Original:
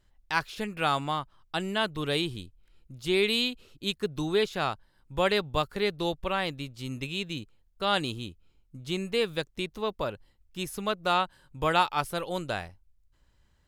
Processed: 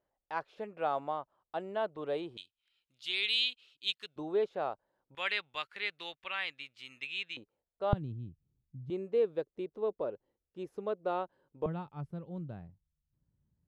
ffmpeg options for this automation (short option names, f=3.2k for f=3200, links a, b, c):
-af "asetnsamples=n=441:p=0,asendcmd='2.37 bandpass f 3200;4.16 bandpass f 570;5.15 bandpass f 2300;7.37 bandpass f 590;7.93 bandpass f 130;8.9 bandpass f 450;11.66 bandpass f 150',bandpass=f=600:t=q:w=2:csg=0"